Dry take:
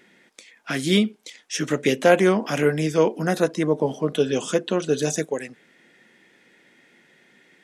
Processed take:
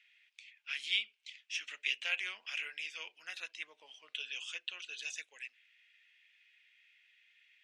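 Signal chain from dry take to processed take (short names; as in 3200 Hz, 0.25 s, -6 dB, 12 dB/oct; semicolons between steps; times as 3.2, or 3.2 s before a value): ladder band-pass 2900 Hz, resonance 65%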